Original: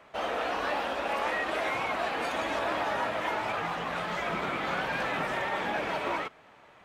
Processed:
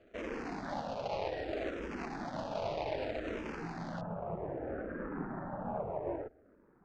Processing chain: median filter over 41 samples; low-pass 5.8 kHz 24 dB/octave, from 4.01 s 1.5 kHz; barber-pole phaser -0.63 Hz; trim +1.5 dB

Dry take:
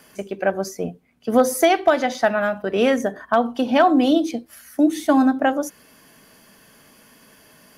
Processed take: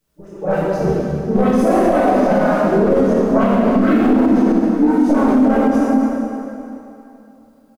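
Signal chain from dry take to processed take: RIAA curve playback; spectral noise reduction 14 dB; high-order bell 2.7 kHz -15.5 dB 1.3 oct; waveshaping leveller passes 2; spectral selection erased 3.70–3.97 s, 400–1200 Hz; harmony voices -3 st -4 dB, +7 st -16 dB; chorus voices 6, 0.99 Hz, delay 29 ms, depth 3 ms; phase dispersion highs, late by 88 ms, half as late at 1.4 kHz; word length cut 12-bit, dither triangular; plate-style reverb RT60 2.9 s, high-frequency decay 0.8×, DRR -6.5 dB; loudness maximiser -1.5 dB; trim -4.5 dB

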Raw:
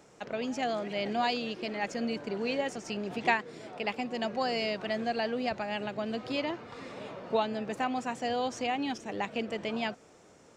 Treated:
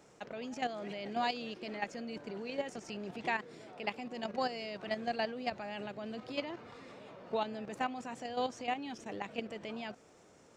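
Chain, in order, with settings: level held to a coarse grid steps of 10 dB; trim -1.5 dB

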